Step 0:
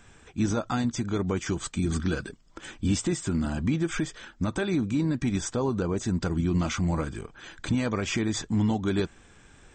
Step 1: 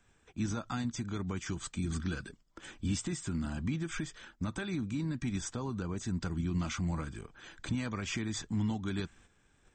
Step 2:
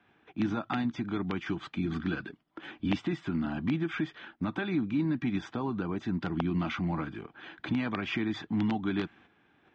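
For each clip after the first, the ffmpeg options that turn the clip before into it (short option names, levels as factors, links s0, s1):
-filter_complex "[0:a]agate=range=0.398:threshold=0.00316:ratio=16:detection=peak,acrossover=split=300|820[s0][s1][s2];[s1]acompressor=threshold=0.00631:ratio=6[s3];[s0][s3][s2]amix=inputs=3:normalize=0,volume=0.473"
-af "aeval=exprs='(mod(15.8*val(0)+1,2)-1)/15.8':c=same,highpass=160,equalizer=f=310:t=q:w=4:g=5,equalizer=f=510:t=q:w=4:g=-4,equalizer=f=760:t=q:w=4:g=5,lowpass=f=3400:w=0.5412,lowpass=f=3400:w=1.3066,volume=1.78"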